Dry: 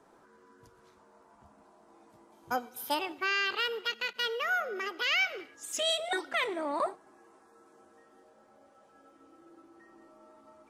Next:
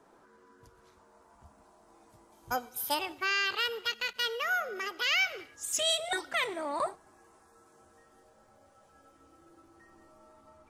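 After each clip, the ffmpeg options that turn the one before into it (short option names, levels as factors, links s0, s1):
-filter_complex "[0:a]asubboost=boost=7:cutoff=100,acrossover=split=5000[s0][s1];[s1]dynaudnorm=f=730:g=3:m=2[s2];[s0][s2]amix=inputs=2:normalize=0"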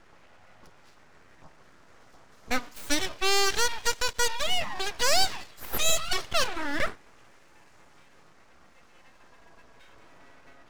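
-af "highshelf=f=7300:t=q:w=1.5:g=-10.5,aeval=exprs='abs(val(0))':c=same,volume=2.24"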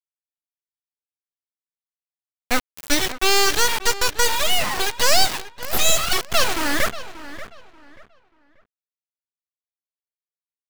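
-filter_complex "[0:a]acrusher=bits=4:mix=0:aa=0.000001,asplit=2[s0][s1];[s1]adelay=585,lowpass=f=3300:p=1,volume=0.2,asplit=2[s2][s3];[s3]adelay=585,lowpass=f=3300:p=1,volume=0.28,asplit=2[s4][s5];[s5]adelay=585,lowpass=f=3300:p=1,volume=0.28[s6];[s0][s2][s4][s6]amix=inputs=4:normalize=0,volume=2"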